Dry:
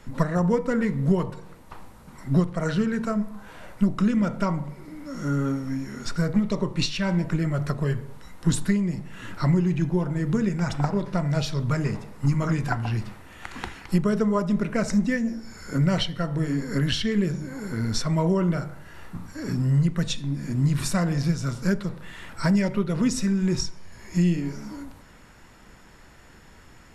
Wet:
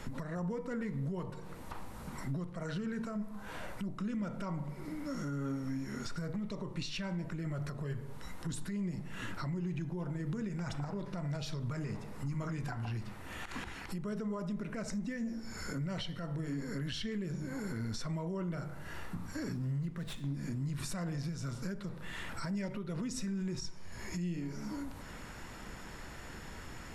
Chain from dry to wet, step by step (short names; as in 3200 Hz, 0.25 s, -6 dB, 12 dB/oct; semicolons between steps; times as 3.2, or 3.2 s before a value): compressor 2.5:1, threshold -44 dBFS, peak gain reduction 19 dB; limiter -34 dBFS, peak gain reduction 11 dB; 19.54–20.33 running maximum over 5 samples; gain +4 dB